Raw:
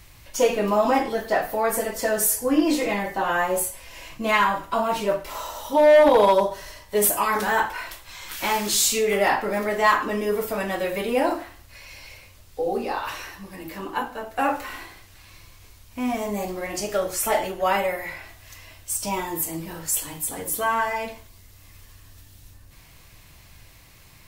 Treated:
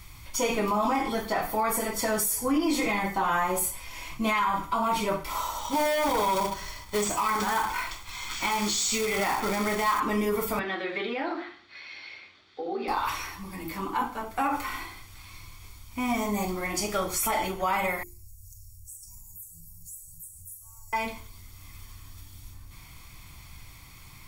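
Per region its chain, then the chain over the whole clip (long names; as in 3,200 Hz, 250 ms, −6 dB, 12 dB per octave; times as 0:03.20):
0:05.59–0:10.00: linear-phase brick-wall low-pass 8,200 Hz + log-companded quantiser 4 bits
0:10.59–0:12.88: loudspeaker in its box 330–4,100 Hz, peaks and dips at 360 Hz +6 dB, 520 Hz −3 dB, 1,000 Hz −9 dB, 1,700 Hz +7 dB, 2,400 Hz −3 dB, 3,900 Hz +5 dB + downward compressor 2.5 to 1, threshold −26 dBFS
0:18.03–0:20.93: inverse Chebyshev band-stop filter 210–3,600 Hz + downward compressor 4 to 1, threshold −45 dBFS
whole clip: mains-hum notches 50/100/150/200/250/300/350/400/450 Hz; comb filter 0.9 ms, depth 56%; brickwall limiter −17.5 dBFS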